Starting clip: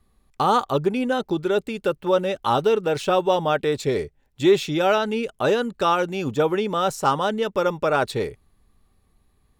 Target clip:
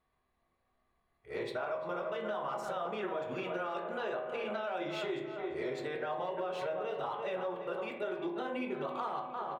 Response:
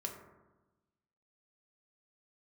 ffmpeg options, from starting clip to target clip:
-filter_complex "[0:a]areverse,asplit=2[link_01][link_02];[link_02]adelay=344,lowpass=frequency=2700:poles=1,volume=-13dB,asplit=2[link_03][link_04];[link_04]adelay=344,lowpass=frequency=2700:poles=1,volume=0.51,asplit=2[link_05][link_06];[link_06]adelay=344,lowpass=frequency=2700:poles=1,volume=0.51,asplit=2[link_07][link_08];[link_08]adelay=344,lowpass=frequency=2700:poles=1,volume=0.51,asplit=2[link_09][link_10];[link_10]adelay=344,lowpass=frequency=2700:poles=1,volume=0.51[link_11];[link_01][link_03][link_05][link_07][link_09][link_11]amix=inputs=6:normalize=0,asplit=2[link_12][link_13];[link_13]aeval=exprs='sgn(val(0))*max(abs(val(0))-0.0178,0)':channel_layout=same,volume=-12dB[link_14];[link_12][link_14]amix=inputs=2:normalize=0,equalizer=frequency=270:width=1.4:gain=-6,asoftclip=type=hard:threshold=-10dB,bass=frequency=250:gain=-15,treble=frequency=4000:gain=-15,alimiter=limit=-19dB:level=0:latency=1:release=28[link_15];[1:a]atrim=start_sample=2205,asetrate=74970,aresample=44100[link_16];[link_15][link_16]afir=irnorm=-1:irlink=0,acompressor=threshold=-33dB:ratio=6"

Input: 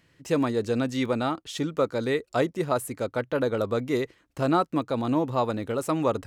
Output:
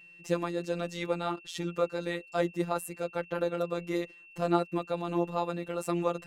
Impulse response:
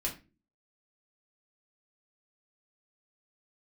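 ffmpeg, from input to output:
-af "afftfilt=real='hypot(re,im)*cos(PI*b)':imag='0':win_size=1024:overlap=0.75,aeval=exprs='val(0)+0.00316*sin(2*PI*2700*n/s)':channel_layout=same,volume=-1.5dB"

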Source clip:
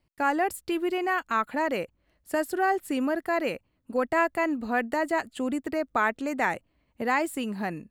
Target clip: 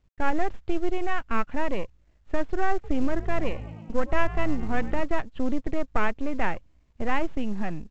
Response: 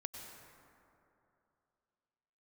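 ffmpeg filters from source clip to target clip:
-filter_complex "[0:a]aeval=exprs='if(lt(val(0),0),0.251*val(0),val(0))':channel_layout=same,lowpass=frequency=3500:width=0.5412,lowpass=frequency=3500:width=1.3066,aemphasis=mode=reproduction:type=bsi,asettb=1/sr,asplit=3[link_01][link_02][link_03];[link_01]atrim=end=2.734[link_04];[link_02]atrim=start=2.73:end=5.01,asetpts=PTS-STARTPTS,afade=type=in:duration=0.004:curve=qsin,afade=type=out:start_time=2.276:duration=0.004:curve=qsin,asplit=7[link_05][link_06][link_07][link_08][link_09][link_10][link_11];[link_06]adelay=107,afreqshift=54,volume=-18dB[link_12];[link_07]adelay=214,afreqshift=108,volume=-21.9dB[link_13];[link_08]adelay=321,afreqshift=162,volume=-25.8dB[link_14];[link_09]adelay=428,afreqshift=216,volume=-29.6dB[link_15];[link_10]adelay=535,afreqshift=270,volume=-33.5dB[link_16];[link_11]adelay=642,afreqshift=324,volume=-37.4dB[link_17];[link_05][link_12][link_13][link_14][link_15][link_16][link_17]amix=inputs=7:normalize=0,atrim=end_sample=100548[link_18];[link_03]atrim=start=5.006[link_19];[link_04][link_18]acrossfade=duration=0.004:curve1=hsin:curve2=qsin[link_20];[link_20][link_19]acrossfade=duration=0.004:curve1=qsin:curve2=hsin" -ar 16000 -c:a pcm_mulaw

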